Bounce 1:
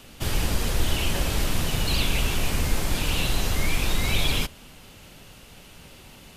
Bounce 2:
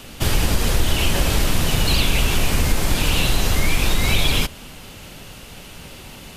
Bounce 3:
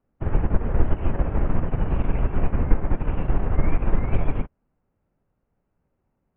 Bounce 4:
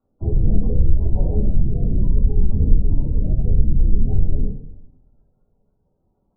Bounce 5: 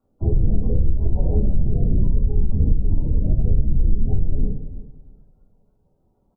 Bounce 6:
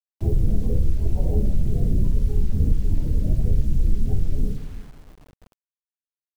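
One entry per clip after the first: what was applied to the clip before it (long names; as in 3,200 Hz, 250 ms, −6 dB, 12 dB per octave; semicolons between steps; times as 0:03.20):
downward compressor 2 to 1, threshold −23 dBFS, peak gain reduction 5 dB; level +8.5 dB
Gaussian smoothing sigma 5.9 samples; expander for the loud parts 2.5 to 1, over −36 dBFS; level +3.5 dB
gate on every frequency bin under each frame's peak −20 dB strong; coupled-rooms reverb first 0.84 s, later 2.2 s, from −25 dB, DRR −8.5 dB; level −2.5 dB
downward compressor, threshold −14 dBFS, peak gain reduction 9.5 dB; repeating echo 333 ms, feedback 24%, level −15 dB; level +2.5 dB
bit-depth reduction 8 bits, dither none; level −2 dB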